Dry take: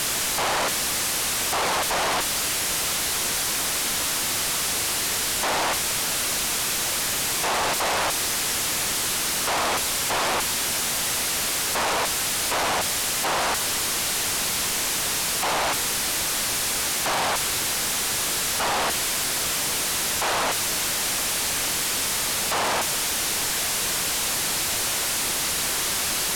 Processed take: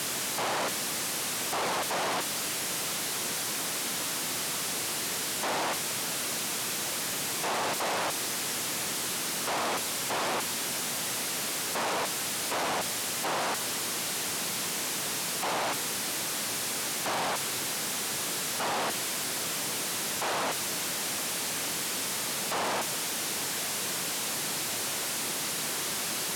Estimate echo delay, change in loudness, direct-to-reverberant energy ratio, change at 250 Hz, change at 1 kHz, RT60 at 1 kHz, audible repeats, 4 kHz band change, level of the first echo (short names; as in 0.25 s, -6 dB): none, -7.0 dB, none, -3.5 dB, -6.5 dB, none, none, -7.5 dB, none